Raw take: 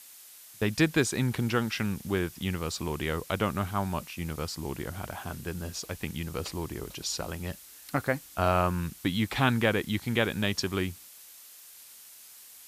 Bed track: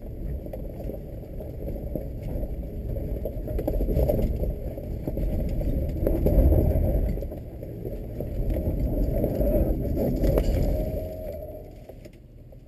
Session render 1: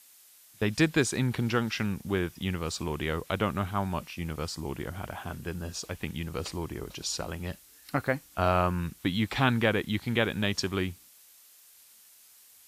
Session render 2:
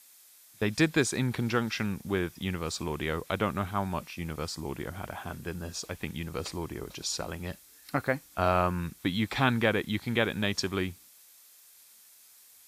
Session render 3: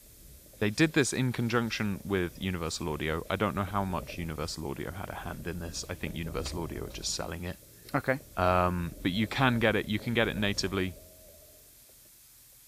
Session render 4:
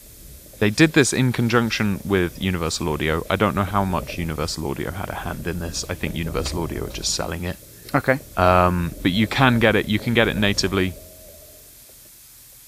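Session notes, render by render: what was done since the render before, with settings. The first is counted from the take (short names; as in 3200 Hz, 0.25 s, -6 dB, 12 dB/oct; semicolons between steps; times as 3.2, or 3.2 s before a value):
noise print and reduce 6 dB
low shelf 120 Hz -4 dB; notch 2900 Hz, Q 15
add bed track -22 dB
gain +10 dB; limiter -1 dBFS, peak gain reduction 1.5 dB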